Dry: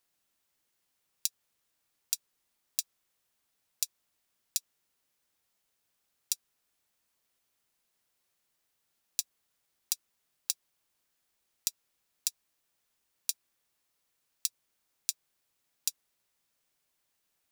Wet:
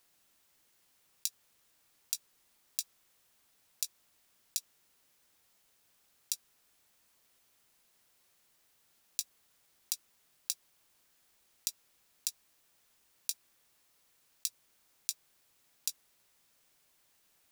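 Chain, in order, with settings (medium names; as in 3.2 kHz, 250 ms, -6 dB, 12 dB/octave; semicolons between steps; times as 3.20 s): compressor with a negative ratio -34 dBFS, ratio -1; trim +2.5 dB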